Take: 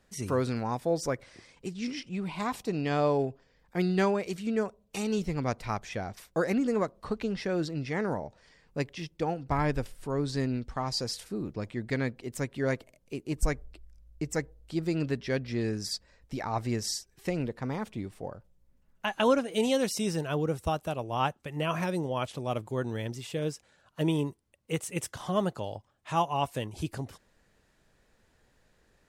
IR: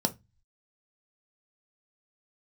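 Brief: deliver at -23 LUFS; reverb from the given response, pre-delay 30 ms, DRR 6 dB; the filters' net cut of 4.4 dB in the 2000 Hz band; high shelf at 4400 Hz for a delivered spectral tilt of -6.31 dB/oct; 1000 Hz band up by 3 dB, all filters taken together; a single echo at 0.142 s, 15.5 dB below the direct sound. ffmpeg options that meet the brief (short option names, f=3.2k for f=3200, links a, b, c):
-filter_complex "[0:a]equalizer=f=1k:t=o:g=5.5,equalizer=f=2k:t=o:g=-7,highshelf=f=4.4k:g=-4.5,aecho=1:1:142:0.168,asplit=2[a][b];[1:a]atrim=start_sample=2205,adelay=30[c];[b][c]afir=irnorm=-1:irlink=0,volume=-13.5dB[d];[a][d]amix=inputs=2:normalize=0,volume=5dB"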